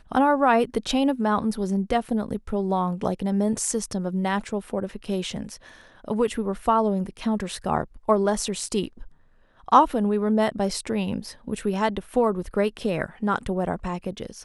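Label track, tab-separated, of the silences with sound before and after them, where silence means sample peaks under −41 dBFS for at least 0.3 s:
9.080000	9.680000	silence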